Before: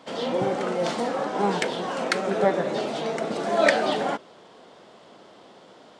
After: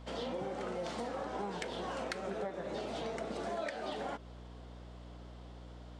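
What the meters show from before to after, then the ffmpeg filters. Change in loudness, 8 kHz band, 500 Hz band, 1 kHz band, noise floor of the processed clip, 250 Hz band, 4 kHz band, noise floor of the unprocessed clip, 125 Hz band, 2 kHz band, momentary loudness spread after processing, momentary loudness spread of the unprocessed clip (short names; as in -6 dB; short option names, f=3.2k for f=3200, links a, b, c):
-14.5 dB, -14.0 dB, -14.5 dB, -14.0 dB, -50 dBFS, -13.5 dB, -13.5 dB, -51 dBFS, -10.5 dB, -16.5 dB, 13 LU, 8 LU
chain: -af "aeval=exprs='val(0)+0.00891*(sin(2*PI*60*n/s)+sin(2*PI*2*60*n/s)/2+sin(2*PI*3*60*n/s)/3+sin(2*PI*4*60*n/s)/4+sin(2*PI*5*60*n/s)/5)':c=same,acompressor=threshold=-27dB:ratio=12,volume=-8dB"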